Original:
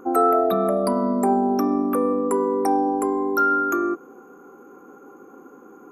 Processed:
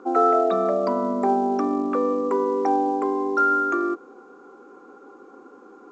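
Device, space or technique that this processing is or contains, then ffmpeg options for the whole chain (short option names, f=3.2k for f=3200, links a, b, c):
telephone: -af "highpass=270,lowpass=3.5k" -ar 16000 -c:a pcm_alaw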